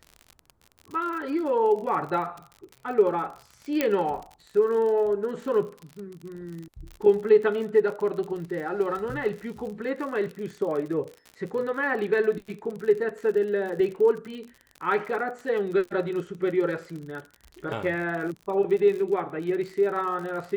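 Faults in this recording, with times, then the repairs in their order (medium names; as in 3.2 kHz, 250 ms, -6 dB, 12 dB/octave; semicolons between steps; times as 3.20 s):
crackle 54 per s -34 dBFS
3.81 s: pop -9 dBFS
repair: de-click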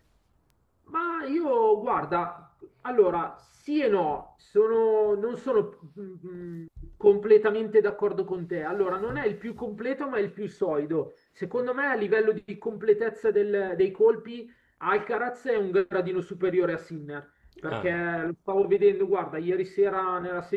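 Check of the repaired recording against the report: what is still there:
nothing left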